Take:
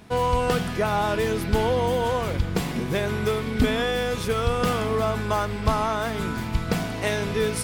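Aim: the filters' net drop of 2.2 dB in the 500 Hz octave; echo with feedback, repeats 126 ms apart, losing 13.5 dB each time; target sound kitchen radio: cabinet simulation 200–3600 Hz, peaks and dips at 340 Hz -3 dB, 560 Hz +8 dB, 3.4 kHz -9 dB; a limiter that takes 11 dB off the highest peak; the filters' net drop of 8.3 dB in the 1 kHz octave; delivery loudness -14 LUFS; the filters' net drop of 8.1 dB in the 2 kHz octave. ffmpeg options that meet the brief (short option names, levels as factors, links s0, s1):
-af "equalizer=f=500:t=o:g=-3,equalizer=f=1000:t=o:g=-9,equalizer=f=2000:t=o:g=-6.5,alimiter=limit=0.112:level=0:latency=1,highpass=200,equalizer=f=340:t=q:w=4:g=-3,equalizer=f=560:t=q:w=4:g=8,equalizer=f=3400:t=q:w=4:g=-9,lowpass=f=3600:w=0.5412,lowpass=f=3600:w=1.3066,aecho=1:1:126|252:0.211|0.0444,volume=6.68"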